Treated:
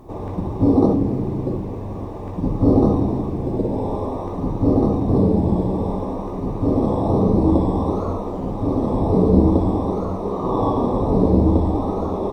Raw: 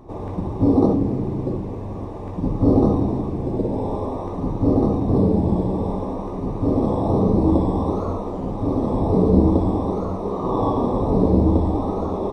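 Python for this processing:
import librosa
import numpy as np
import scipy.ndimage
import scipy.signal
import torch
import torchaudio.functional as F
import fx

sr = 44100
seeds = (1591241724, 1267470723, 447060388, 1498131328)

y = fx.quant_dither(x, sr, seeds[0], bits=12, dither='triangular')
y = y * 10.0 ** (1.0 / 20.0)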